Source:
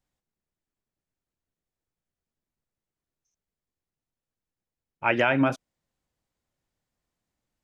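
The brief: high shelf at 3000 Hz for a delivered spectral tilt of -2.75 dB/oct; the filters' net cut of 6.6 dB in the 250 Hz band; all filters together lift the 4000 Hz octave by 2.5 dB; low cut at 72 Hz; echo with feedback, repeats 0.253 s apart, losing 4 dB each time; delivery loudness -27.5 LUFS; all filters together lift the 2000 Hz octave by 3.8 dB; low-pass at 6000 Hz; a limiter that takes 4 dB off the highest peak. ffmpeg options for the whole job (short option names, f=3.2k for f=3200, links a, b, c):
-af "highpass=72,lowpass=6k,equalizer=f=250:t=o:g=-7.5,equalizer=f=2k:t=o:g=6,highshelf=f=3k:g=-5,equalizer=f=4k:t=o:g=4.5,alimiter=limit=-9.5dB:level=0:latency=1,aecho=1:1:253|506|759|1012|1265|1518|1771|2024|2277:0.631|0.398|0.25|0.158|0.0994|0.0626|0.0394|0.0249|0.0157,volume=-2.5dB"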